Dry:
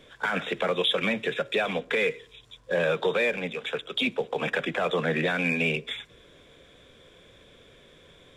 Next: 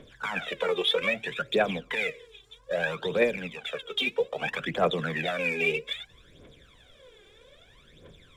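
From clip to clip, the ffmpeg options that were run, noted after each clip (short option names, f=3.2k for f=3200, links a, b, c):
-af "aphaser=in_gain=1:out_gain=1:delay=2.6:decay=0.75:speed=0.62:type=triangular,volume=-5dB"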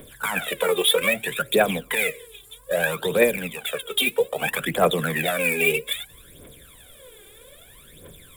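-af "aexciter=amount=12.8:drive=7.8:freq=8.7k,volume=5.5dB"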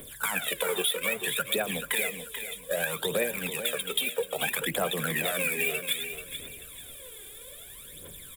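-filter_complex "[0:a]highshelf=f=3.1k:g=9,acompressor=threshold=-22dB:ratio=6,asplit=2[a][b];[b]aecho=0:1:436|872|1308:0.335|0.0904|0.0244[c];[a][c]amix=inputs=2:normalize=0,volume=-3.5dB"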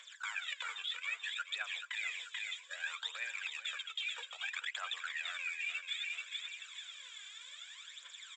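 -af "highpass=f=1.2k:w=0.5412,highpass=f=1.2k:w=1.3066,areverse,acompressor=threshold=-37dB:ratio=6,areverse,aresample=16000,aresample=44100,volume=1.5dB"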